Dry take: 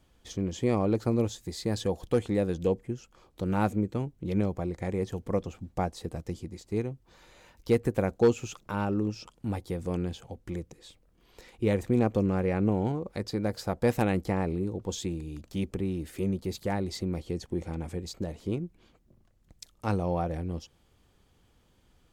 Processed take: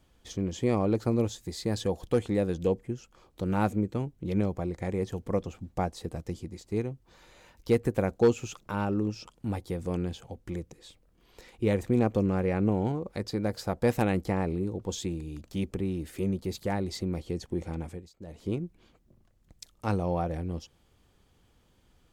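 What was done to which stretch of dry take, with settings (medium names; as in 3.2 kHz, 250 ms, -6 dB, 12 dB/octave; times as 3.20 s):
17.80–18.48 s: dip -18.5 dB, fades 0.30 s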